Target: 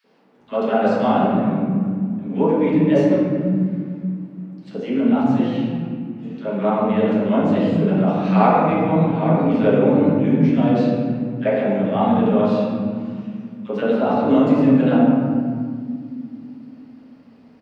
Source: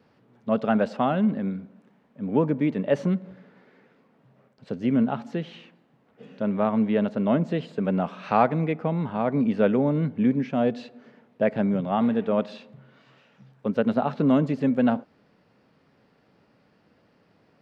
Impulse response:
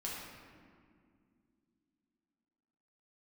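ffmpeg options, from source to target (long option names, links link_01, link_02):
-filter_complex "[0:a]acrossover=split=200|1500[link_01][link_02][link_03];[link_02]adelay=40[link_04];[link_01]adelay=380[link_05];[link_05][link_04][link_03]amix=inputs=3:normalize=0[link_06];[1:a]atrim=start_sample=2205[link_07];[link_06][link_07]afir=irnorm=-1:irlink=0,volume=6.5dB"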